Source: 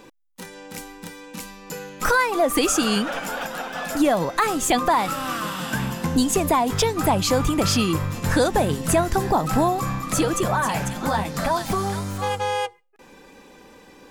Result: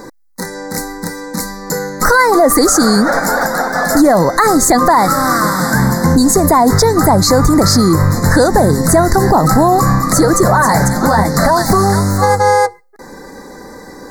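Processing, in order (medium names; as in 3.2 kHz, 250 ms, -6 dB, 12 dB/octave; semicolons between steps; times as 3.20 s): elliptic band-stop 2–4.1 kHz, stop band 70 dB; loudness maximiser +16.5 dB; trim -1 dB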